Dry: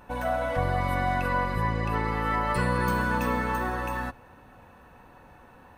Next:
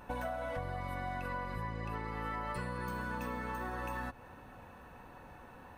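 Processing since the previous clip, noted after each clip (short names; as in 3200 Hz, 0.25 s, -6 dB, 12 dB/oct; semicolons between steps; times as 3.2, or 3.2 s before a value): compressor 12:1, threshold -34 dBFS, peak gain reduction 13.5 dB; gain -1 dB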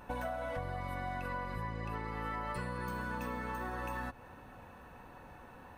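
nothing audible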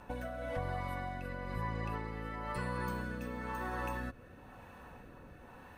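rotary speaker horn 1 Hz; gain +2.5 dB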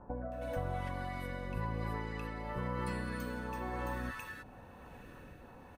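bands offset in time lows, highs 0.32 s, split 1200 Hz; gain +1 dB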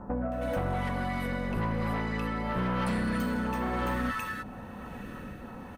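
small resonant body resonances 210/1300/1900/3100 Hz, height 9 dB; sine folder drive 6 dB, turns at -23.5 dBFS; gain -1.5 dB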